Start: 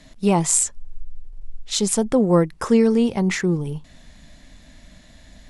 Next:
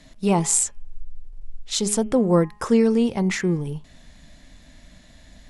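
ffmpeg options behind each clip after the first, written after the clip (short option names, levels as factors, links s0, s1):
-af "bandreject=f=208.1:t=h:w=4,bandreject=f=416.2:t=h:w=4,bandreject=f=624.3:t=h:w=4,bandreject=f=832.4:t=h:w=4,bandreject=f=1040.5:t=h:w=4,bandreject=f=1248.6:t=h:w=4,bandreject=f=1456.7:t=h:w=4,bandreject=f=1664.8:t=h:w=4,bandreject=f=1872.9:t=h:w=4,bandreject=f=2081:t=h:w=4,bandreject=f=2289.1:t=h:w=4,bandreject=f=2497.2:t=h:w=4,bandreject=f=2705.3:t=h:w=4,bandreject=f=2913.4:t=h:w=4,bandreject=f=3121.5:t=h:w=4,volume=0.841"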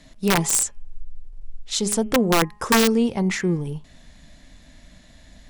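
-af "aeval=exprs='(mod(3.16*val(0)+1,2)-1)/3.16':c=same"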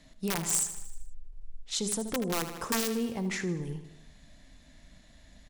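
-filter_complex "[0:a]aecho=1:1:78|156|234|312|390|468:0.237|0.133|0.0744|0.0416|0.0233|0.0131,acrossover=split=5200[s0][s1];[s0]alimiter=limit=0.158:level=0:latency=1:release=193[s2];[s2][s1]amix=inputs=2:normalize=0,volume=0.422"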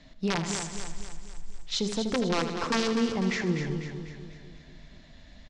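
-af "lowpass=f=5500:w=0.5412,lowpass=f=5500:w=1.3066,aecho=1:1:248|496|744|992|1240|1488:0.398|0.199|0.0995|0.0498|0.0249|0.0124,volume=1.58"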